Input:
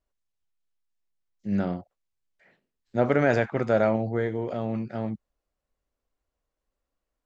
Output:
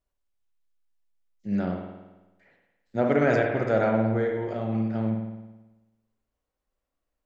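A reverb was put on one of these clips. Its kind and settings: spring tank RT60 1.1 s, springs 54 ms, chirp 55 ms, DRR 2 dB; gain -2 dB

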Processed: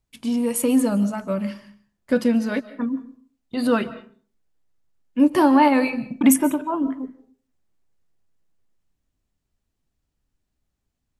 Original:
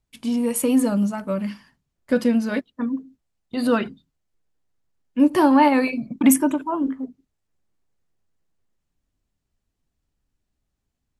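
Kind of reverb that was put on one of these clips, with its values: digital reverb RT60 0.44 s, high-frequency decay 0.65×, pre-delay 0.105 s, DRR 16 dB

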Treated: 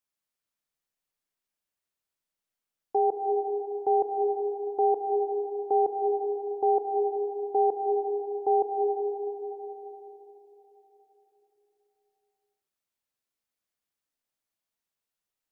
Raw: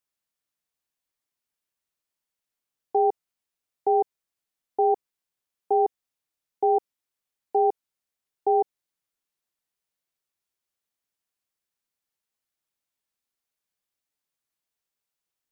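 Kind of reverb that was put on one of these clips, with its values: digital reverb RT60 4 s, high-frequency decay 0.3×, pre-delay 0.1 s, DRR 3 dB; gain -3 dB

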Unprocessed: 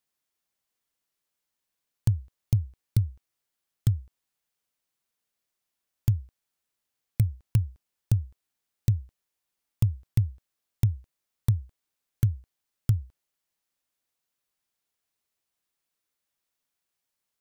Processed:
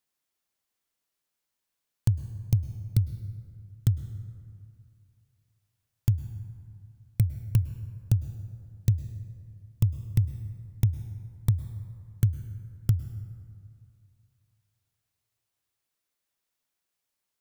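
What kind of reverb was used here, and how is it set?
plate-style reverb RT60 2.4 s, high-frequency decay 0.45×, pre-delay 95 ms, DRR 12 dB

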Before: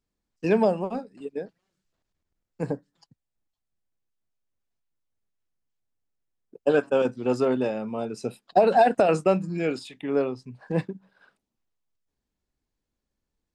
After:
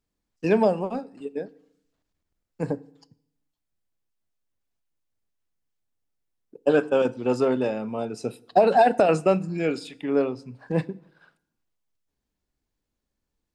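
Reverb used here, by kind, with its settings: FDN reverb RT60 0.72 s, low-frequency decay 1.2×, high-frequency decay 0.85×, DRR 18 dB; gain +1 dB

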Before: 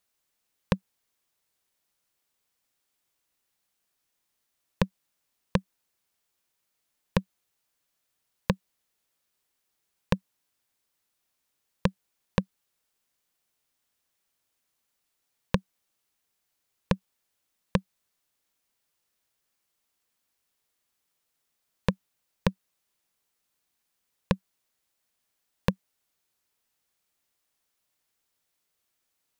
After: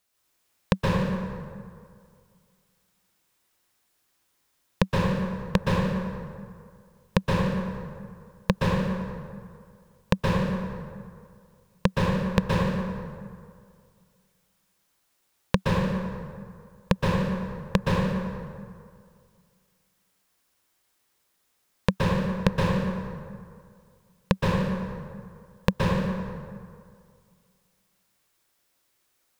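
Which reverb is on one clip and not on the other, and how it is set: plate-style reverb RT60 2.1 s, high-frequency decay 0.55×, pre-delay 0.11 s, DRR -5 dB; gain +2.5 dB

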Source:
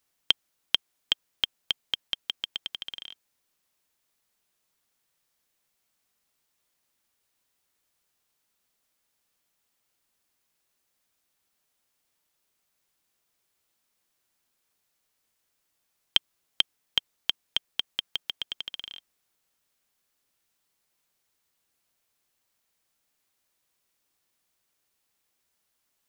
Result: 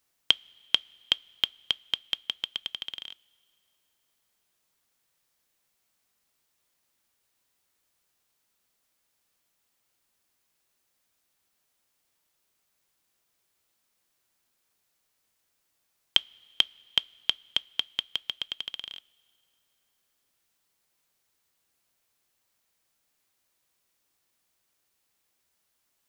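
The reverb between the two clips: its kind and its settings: two-slope reverb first 0.2 s, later 2.9 s, from -18 dB, DRR 19.5 dB; gain +1 dB

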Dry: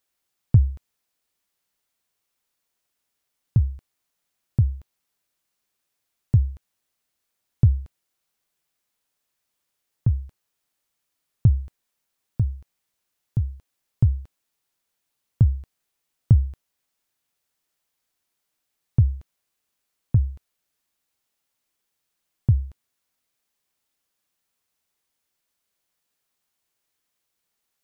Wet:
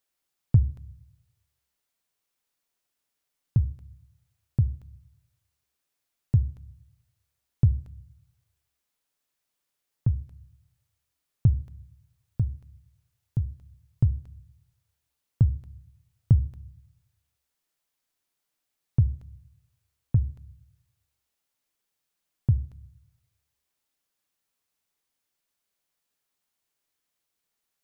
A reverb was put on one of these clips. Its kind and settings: shoebox room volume 730 m³, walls furnished, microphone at 0.3 m; gain -3.5 dB

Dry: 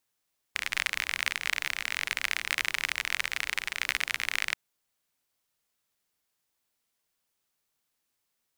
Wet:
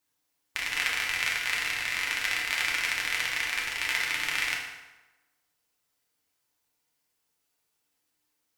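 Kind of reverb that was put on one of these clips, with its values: FDN reverb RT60 1.1 s, low-frequency decay 0.9×, high-frequency decay 0.75×, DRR -3.5 dB; gain -2.5 dB

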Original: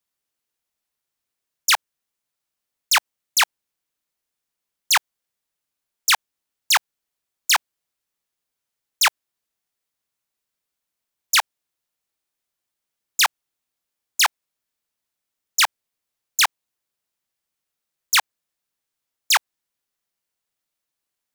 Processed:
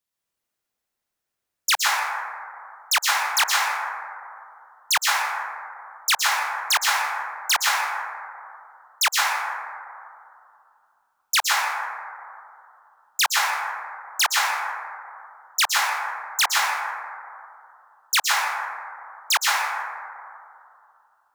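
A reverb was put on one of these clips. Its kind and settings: plate-style reverb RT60 2.5 s, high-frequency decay 0.25×, pre-delay 0.105 s, DRR -4.5 dB; gain -3.5 dB

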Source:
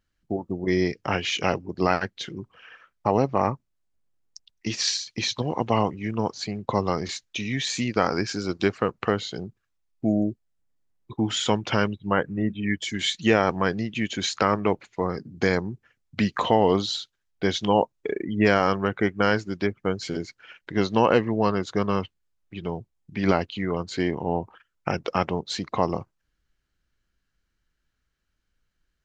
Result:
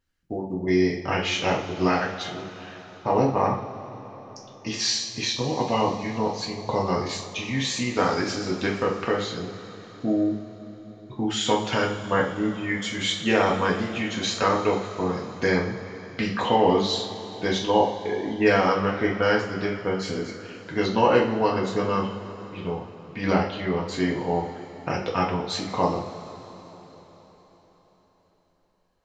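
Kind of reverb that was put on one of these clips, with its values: two-slope reverb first 0.45 s, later 4.6 s, from -18 dB, DRR -3.5 dB; gain -4 dB

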